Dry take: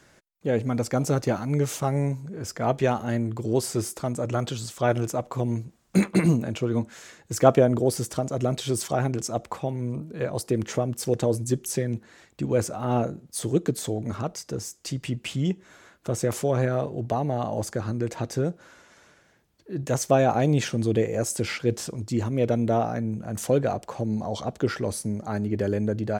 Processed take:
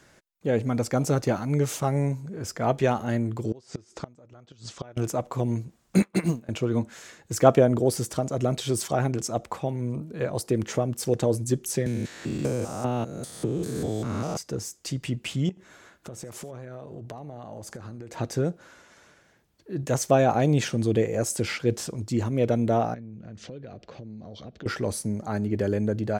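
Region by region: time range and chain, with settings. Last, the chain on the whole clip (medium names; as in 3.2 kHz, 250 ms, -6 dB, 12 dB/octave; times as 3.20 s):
3.51–4.97 s: inverted gate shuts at -20 dBFS, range -25 dB + low-pass 6.7 kHz 24 dB/octave
6.02–6.49 s: companding laws mixed up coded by mu + bass shelf 440 Hz -4 dB + upward expansion 2.5:1, over -35 dBFS
11.86–14.37 s: spectrogram pixelated in time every 200 ms + three bands compressed up and down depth 100%
15.49–18.14 s: compression 10:1, threshold -35 dBFS + delay 81 ms -20 dB
22.94–24.66 s: low-pass 4.8 kHz 24 dB/octave + peaking EQ 920 Hz -14.5 dB 0.94 oct + compression 5:1, threshold -38 dBFS
whole clip: none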